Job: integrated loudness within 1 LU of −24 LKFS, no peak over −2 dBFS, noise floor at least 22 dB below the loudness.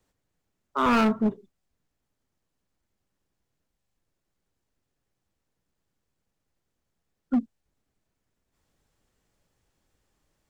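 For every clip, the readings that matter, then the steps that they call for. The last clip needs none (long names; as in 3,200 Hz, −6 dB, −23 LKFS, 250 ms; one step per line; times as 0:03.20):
share of clipped samples 0.8%; peaks flattened at −18.0 dBFS; number of dropouts 1; longest dropout 1.4 ms; integrated loudness −25.5 LKFS; sample peak −18.0 dBFS; target loudness −24.0 LKFS
→ clipped peaks rebuilt −18 dBFS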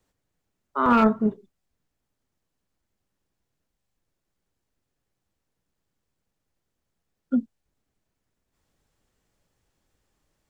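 share of clipped samples 0.0%; number of dropouts 1; longest dropout 1.4 ms
→ repair the gap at 0:00.86, 1.4 ms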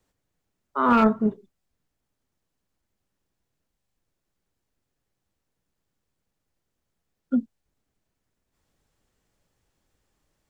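number of dropouts 0; integrated loudness −22.5 LKFS; sample peak −9.0 dBFS; target loudness −24.0 LKFS
→ level −1.5 dB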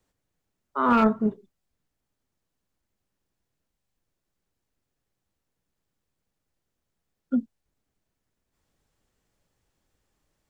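integrated loudness −24.0 LKFS; sample peak −10.5 dBFS; background noise floor −82 dBFS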